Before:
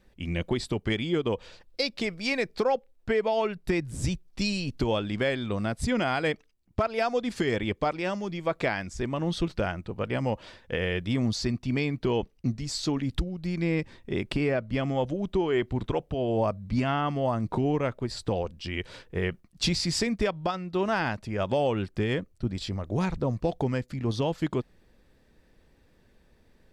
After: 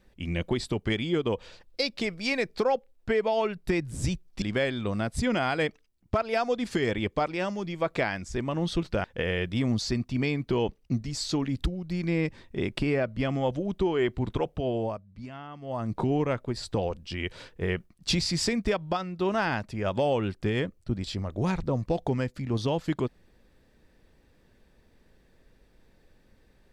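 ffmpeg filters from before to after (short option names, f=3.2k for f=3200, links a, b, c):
-filter_complex "[0:a]asplit=5[a][b][c][d][e];[a]atrim=end=4.422[f];[b]atrim=start=5.068:end=9.692[g];[c]atrim=start=10.578:end=16.56,asetpts=PTS-STARTPTS,afade=t=out:st=5.642:d=0.34:silence=0.177828[h];[d]atrim=start=16.56:end=17.15,asetpts=PTS-STARTPTS,volume=-15dB[i];[e]atrim=start=17.15,asetpts=PTS-STARTPTS,afade=t=in:d=0.34:silence=0.177828[j];[f][g]acrossfade=d=0.004:c1=hsin:c2=hsin[k];[h][i][j]concat=n=3:v=0:a=1[l];[k][l]acrossfade=d=0.004:c1=hsin:c2=hsin"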